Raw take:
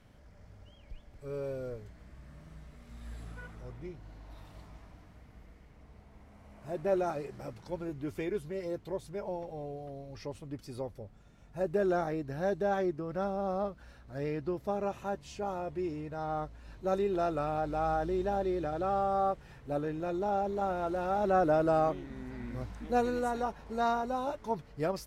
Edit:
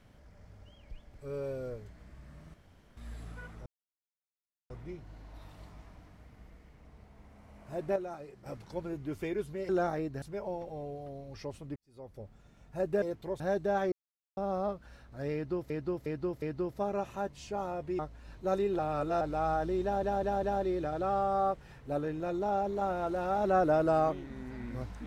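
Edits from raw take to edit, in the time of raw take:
2.54–2.97 room tone
3.66 insert silence 1.04 s
6.92–7.42 gain -9 dB
8.65–9.03 swap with 11.83–12.36
10.57–11.03 fade in quadratic
12.88–13.33 mute
14.3–14.66 loop, 4 plays
15.87–16.39 cut
17.19–17.61 reverse
18.23 stutter 0.20 s, 4 plays

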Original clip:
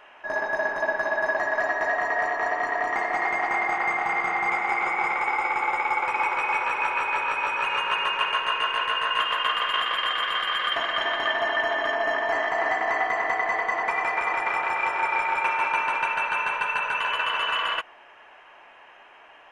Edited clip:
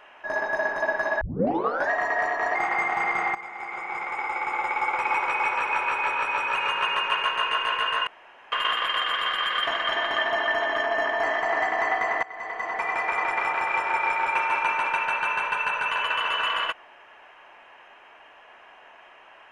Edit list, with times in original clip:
1.21 tape start 0.69 s
2.55–3.64 cut
4.44–6.15 fade in, from -15.5 dB
9.16–9.61 room tone
13.32–14.42 fade in equal-power, from -20.5 dB

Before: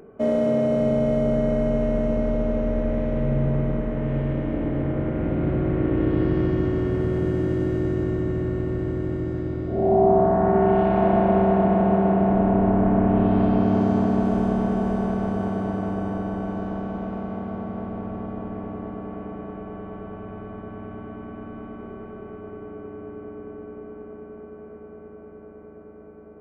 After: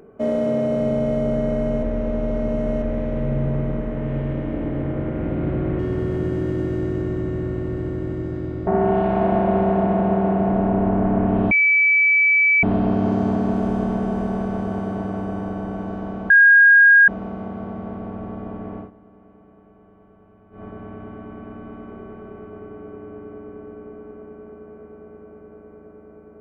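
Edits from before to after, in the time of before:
1.83–2.82 reverse
5.79–6.81 cut
9.69–10.48 cut
13.32 add tone 2300 Hz -12.5 dBFS 1.12 s
16.99 add tone 1630 Hz -7.5 dBFS 0.78 s
18.7–20.54 dip -16 dB, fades 0.12 s

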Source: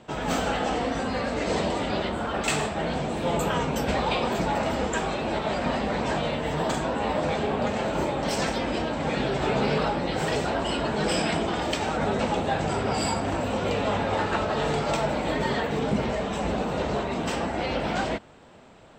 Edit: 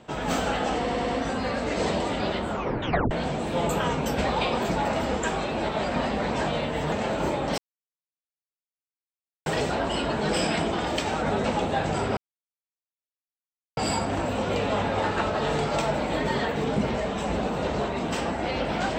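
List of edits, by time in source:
0.78 stutter 0.10 s, 4 plays
2.2 tape stop 0.61 s
6.62–7.67 cut
8.33–10.21 mute
12.92 insert silence 1.60 s

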